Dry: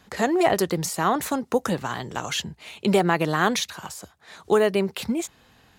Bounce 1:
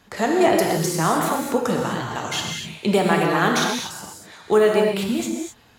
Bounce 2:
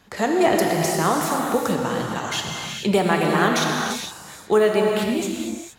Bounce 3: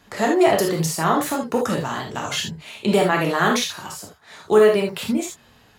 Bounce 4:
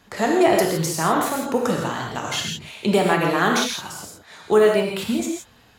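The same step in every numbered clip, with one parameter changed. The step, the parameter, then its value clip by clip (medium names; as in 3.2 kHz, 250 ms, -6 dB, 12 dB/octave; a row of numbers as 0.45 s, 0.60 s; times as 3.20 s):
gated-style reverb, gate: 280 ms, 490 ms, 100 ms, 190 ms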